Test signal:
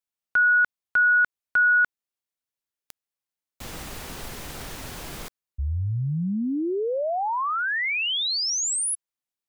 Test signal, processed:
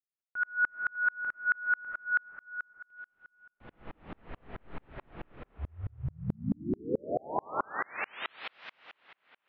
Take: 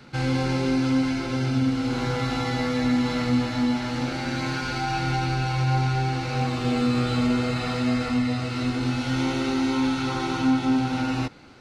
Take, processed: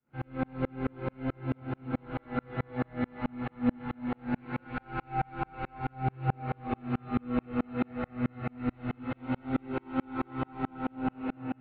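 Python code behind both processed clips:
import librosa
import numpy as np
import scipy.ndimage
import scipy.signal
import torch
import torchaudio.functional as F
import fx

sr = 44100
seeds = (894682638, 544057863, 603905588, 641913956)

y = scipy.signal.sosfilt(scipy.signal.bessel(8, 1700.0, 'lowpass', norm='mag', fs=sr, output='sos'), x)
y = fx.hum_notches(y, sr, base_hz=60, count=3)
y = fx.rev_freeverb(y, sr, rt60_s=3.0, hf_ratio=0.75, predelay_ms=50, drr_db=-5.0)
y = fx.tremolo_decay(y, sr, direction='swelling', hz=4.6, depth_db=38)
y = F.gain(torch.from_numpy(y), -4.5).numpy()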